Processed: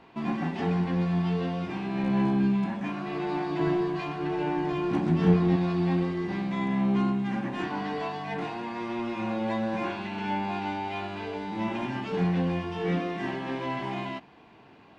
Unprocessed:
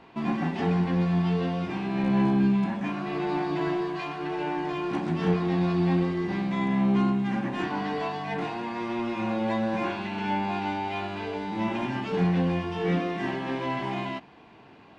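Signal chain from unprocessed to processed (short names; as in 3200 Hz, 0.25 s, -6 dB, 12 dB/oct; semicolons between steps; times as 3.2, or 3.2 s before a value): 3.59–5.56 low shelf 330 Hz +8.5 dB; gain -2 dB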